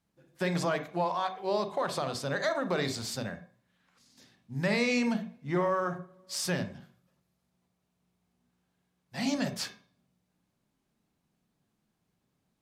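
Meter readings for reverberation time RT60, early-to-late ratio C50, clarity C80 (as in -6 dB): 0.45 s, 11.5 dB, 16.0 dB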